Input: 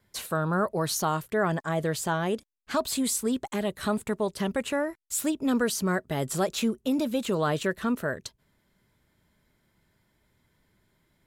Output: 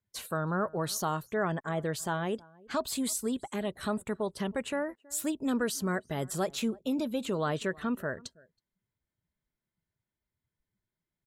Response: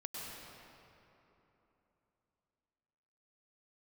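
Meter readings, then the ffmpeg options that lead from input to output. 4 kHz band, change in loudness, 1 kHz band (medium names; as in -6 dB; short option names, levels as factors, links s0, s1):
-4.5 dB, -4.5 dB, -4.5 dB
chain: -af "aecho=1:1:323:0.0631,afftdn=nr=18:nf=-51,volume=0.596"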